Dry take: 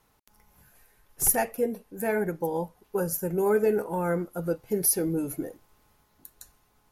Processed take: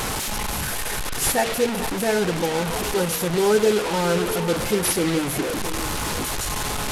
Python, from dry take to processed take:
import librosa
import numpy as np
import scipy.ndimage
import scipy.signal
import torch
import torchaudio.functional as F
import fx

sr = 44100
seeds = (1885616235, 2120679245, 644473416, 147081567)

y = fx.delta_mod(x, sr, bps=64000, step_db=-24.5)
y = fx.echo_stepped(y, sr, ms=222, hz=3000.0, octaves=-1.4, feedback_pct=70, wet_db=-4.5)
y = y * librosa.db_to_amplitude(5.0)